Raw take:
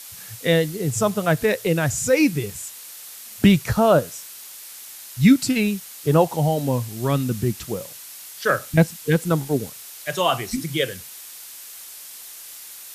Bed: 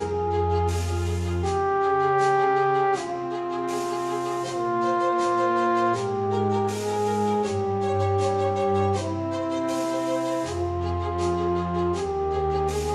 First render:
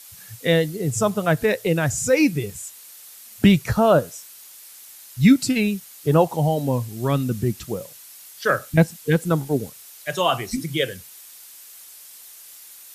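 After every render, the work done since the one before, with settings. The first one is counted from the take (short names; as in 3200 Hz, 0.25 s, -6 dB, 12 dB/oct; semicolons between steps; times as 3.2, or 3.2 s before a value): denoiser 6 dB, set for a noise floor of -40 dBFS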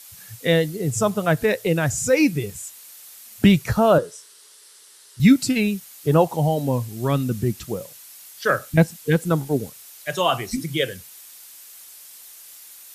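3.98–5.2 speaker cabinet 180–9900 Hz, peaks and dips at 230 Hz -9 dB, 420 Hz +10 dB, 720 Hz -8 dB, 2400 Hz -7 dB, 6800 Hz -6 dB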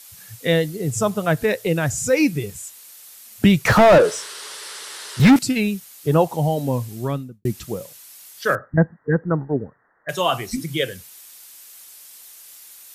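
3.65–5.39 overdrive pedal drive 31 dB, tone 1600 Hz, clips at -4 dBFS; 6.92–7.45 studio fade out; 8.55–10.09 Chebyshev low-pass 1900 Hz, order 8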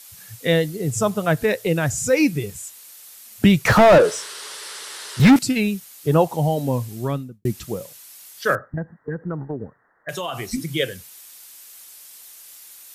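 8.65–10.46 compressor 12:1, threshold -23 dBFS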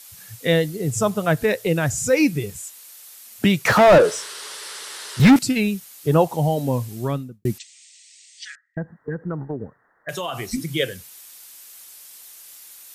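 2.61–3.88 HPF 240 Hz 6 dB/oct; 7.58–8.77 Chebyshev band-pass 1900–8500 Hz, order 5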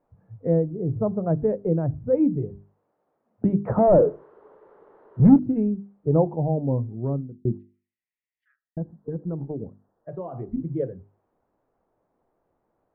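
Bessel low-pass 510 Hz, order 4; notches 50/100/150/200/250/300/350/400 Hz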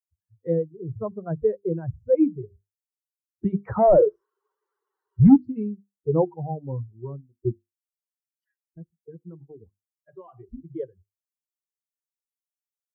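per-bin expansion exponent 2; in parallel at -2.5 dB: limiter -17 dBFS, peak gain reduction 10.5 dB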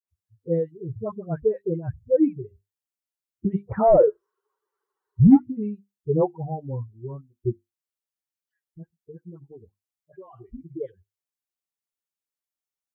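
dispersion highs, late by 82 ms, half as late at 1100 Hz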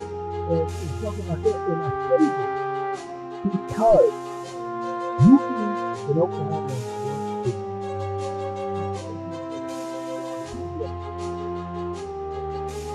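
add bed -5.5 dB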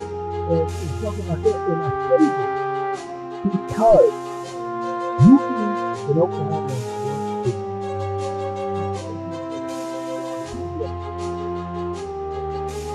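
gain +3 dB; limiter -2 dBFS, peak gain reduction 2 dB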